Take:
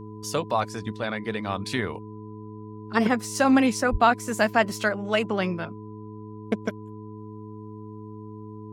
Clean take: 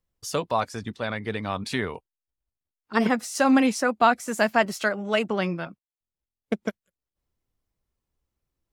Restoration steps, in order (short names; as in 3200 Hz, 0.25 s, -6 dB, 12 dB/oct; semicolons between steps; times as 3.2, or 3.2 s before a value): de-hum 106.7 Hz, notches 4; notch 1000 Hz, Q 30; 3.91–4.03 HPF 140 Hz 24 dB/oct